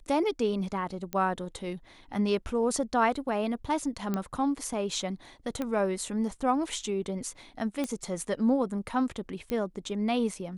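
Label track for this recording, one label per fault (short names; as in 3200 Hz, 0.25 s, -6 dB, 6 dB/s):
1.130000	1.130000	pop -18 dBFS
4.140000	4.140000	pop -17 dBFS
5.620000	5.620000	pop -19 dBFS
7.840000	7.840000	pop -18 dBFS
9.500000	9.500000	pop -19 dBFS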